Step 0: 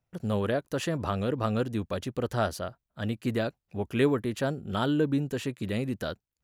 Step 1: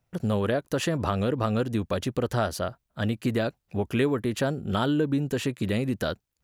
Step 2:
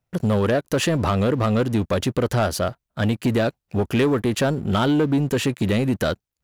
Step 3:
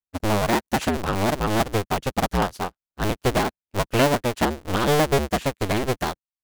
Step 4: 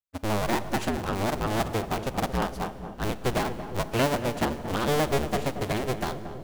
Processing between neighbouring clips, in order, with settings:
downward compressor 2.5 to 1, threshold −30 dBFS, peak gain reduction 8 dB; level +6.5 dB
leveller curve on the samples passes 2
sub-harmonics by changed cycles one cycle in 2, inverted; expander for the loud parts 2.5 to 1, over −36 dBFS; level +1.5 dB
feedback echo with a low-pass in the loop 229 ms, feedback 72%, low-pass 1,200 Hz, level −10 dB; four-comb reverb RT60 2.1 s, combs from 26 ms, DRR 14.5 dB; level −5.5 dB

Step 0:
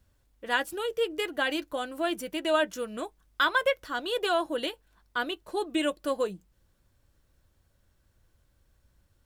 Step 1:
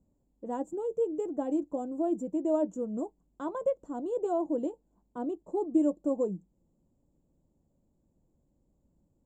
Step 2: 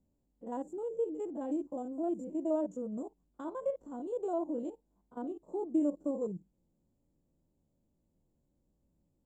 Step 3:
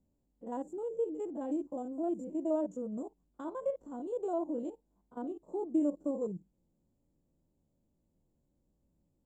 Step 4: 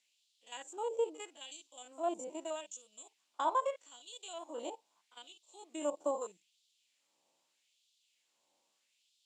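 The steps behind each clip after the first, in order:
drawn EQ curve 110 Hz 0 dB, 160 Hz +13 dB, 280 Hz +14 dB, 410 Hz +8 dB, 890 Hz +3 dB, 1,600 Hz −23 dB, 3,400 Hz −27 dB, 5,100 Hz −28 dB, 7,300 Hz +3 dB, 10,000 Hz −27 dB; level −8 dB
spectrum averaged block by block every 50 ms; level −3.5 dB
no processing that can be heard
low-pass filter 6,800 Hz 12 dB per octave; high shelf with overshoot 2,100 Hz +9 dB, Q 1.5; auto-filter high-pass sine 0.79 Hz 860–3,600 Hz; level +9.5 dB

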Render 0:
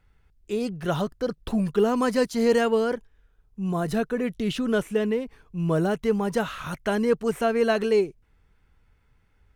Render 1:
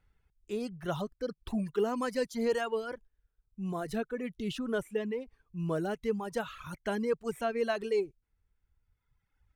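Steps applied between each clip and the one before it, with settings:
reverb reduction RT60 1.7 s
level −7.5 dB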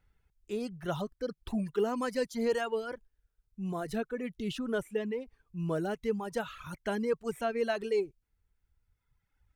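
notch filter 1,100 Hz, Q 24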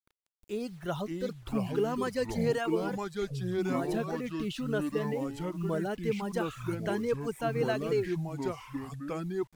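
bit-depth reduction 10 bits, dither none
delay with pitch and tempo change per echo 441 ms, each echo −4 semitones, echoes 2

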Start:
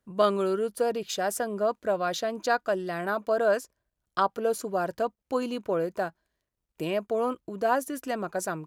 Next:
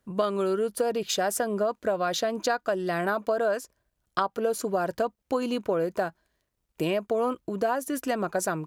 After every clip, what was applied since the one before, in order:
downward compressor 6 to 1, threshold −28 dBFS, peak gain reduction 10.5 dB
level +5.5 dB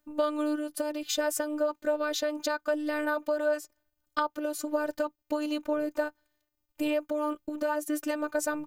phases set to zero 301 Hz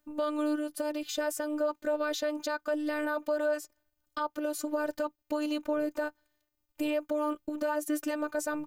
brickwall limiter −19.5 dBFS, peak gain reduction 9.5 dB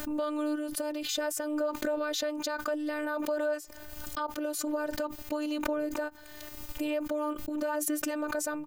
background raised ahead of every attack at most 34 dB per second
level −1.5 dB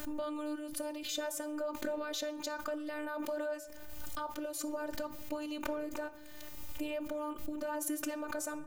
rectangular room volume 230 cubic metres, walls mixed, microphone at 0.31 metres
level −5.5 dB

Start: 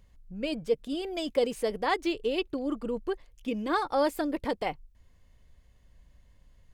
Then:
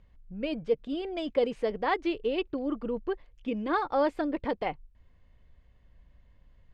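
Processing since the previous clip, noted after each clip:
low-pass filter 3,000 Hz 12 dB per octave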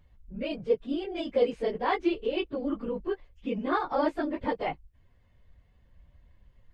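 random phases in long frames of 50 ms

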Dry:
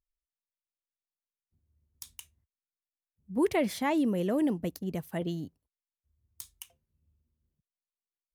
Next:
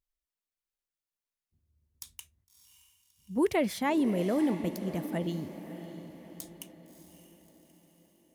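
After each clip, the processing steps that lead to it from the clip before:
feedback delay with all-pass diffusion 622 ms, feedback 48%, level −11.5 dB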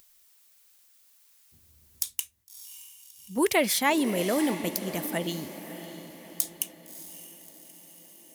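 spectral tilt +3 dB per octave
upward compression, threshold −51 dBFS
level +6 dB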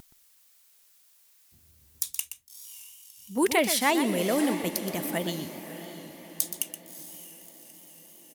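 pitch vibrato 3.1 Hz 57 cents
single-tap delay 123 ms −10 dB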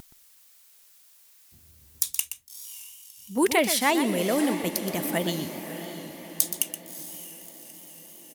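speech leveller within 3 dB 2 s
level +1.5 dB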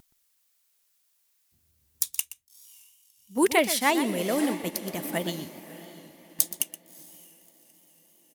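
expander for the loud parts 1.5 to 1, over −47 dBFS
level +1 dB

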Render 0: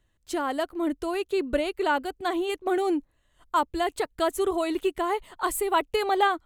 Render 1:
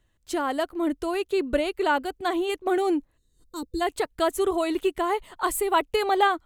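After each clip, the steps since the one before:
gain on a spectral selection 0:03.17–0:03.81, 510–3,600 Hz −20 dB
level +1.5 dB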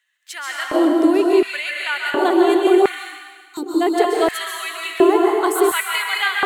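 dense smooth reverb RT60 1.6 s, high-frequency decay 0.95×, pre-delay 115 ms, DRR −2 dB
auto-filter high-pass square 0.7 Hz 340–1,900 Hz
level +2.5 dB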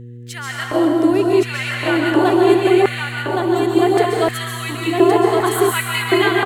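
hum with harmonics 120 Hz, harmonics 4, −35 dBFS −8 dB per octave
single-tap delay 1,117 ms −3 dB

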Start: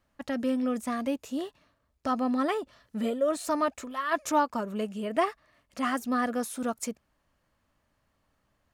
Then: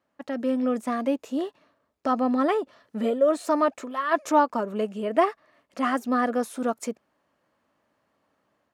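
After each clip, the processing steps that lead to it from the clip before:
automatic gain control gain up to 4.5 dB
high-pass filter 330 Hz 12 dB per octave
spectral tilt −2.5 dB per octave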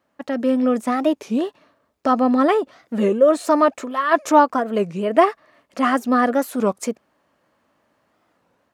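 wow of a warped record 33 1/3 rpm, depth 250 cents
level +6.5 dB

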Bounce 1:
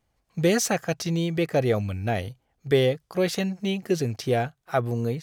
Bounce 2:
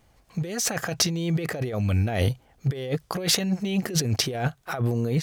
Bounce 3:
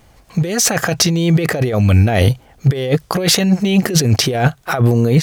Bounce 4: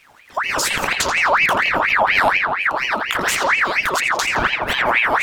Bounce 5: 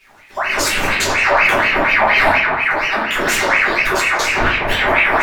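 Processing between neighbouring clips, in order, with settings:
compressor whose output falls as the input rises −32 dBFS, ratio −1; level +6 dB
boost into a limiter +13 dB; level −1 dB
downward compressor, threshold −15 dBFS, peak gain reduction 8.5 dB; on a send: feedback echo with a low-pass in the loop 84 ms, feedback 83%, low-pass 3,200 Hz, level −4.5 dB; on the sum: ring modulator whose carrier an LFO sweeps 1,600 Hz, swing 55%, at 4.2 Hz
convolution reverb RT60 0.45 s, pre-delay 5 ms, DRR −7.5 dB; level −5 dB

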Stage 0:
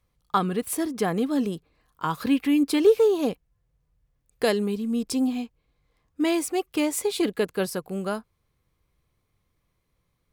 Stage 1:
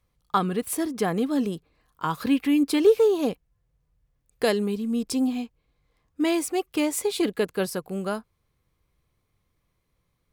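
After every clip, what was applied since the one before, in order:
no processing that can be heard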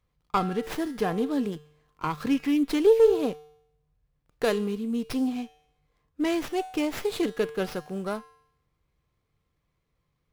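tuned comb filter 150 Hz, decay 0.73 s, harmonics odd, mix 70%
windowed peak hold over 5 samples
level +7.5 dB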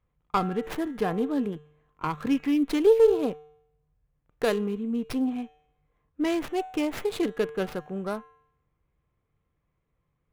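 adaptive Wiener filter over 9 samples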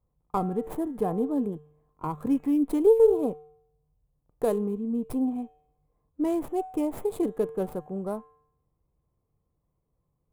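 flat-topped bell 2,900 Hz −15.5 dB 2.5 octaves
notch filter 2,800 Hz, Q 21

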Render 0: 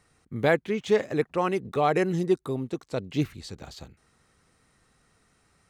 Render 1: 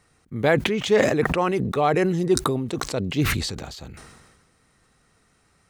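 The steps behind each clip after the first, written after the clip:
level that may fall only so fast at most 39 dB per second
level +2.5 dB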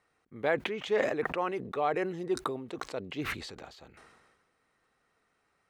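bass and treble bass −13 dB, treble −11 dB
level −8 dB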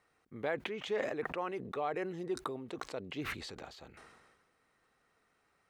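downward compressor 1.5 to 1, threshold −43 dBFS, peak gain reduction 7.5 dB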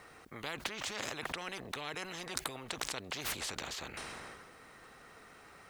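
every bin compressed towards the loudest bin 4 to 1
level +8 dB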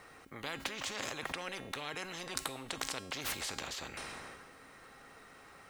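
tuned comb filter 270 Hz, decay 0.72 s, mix 70%
level +9.5 dB

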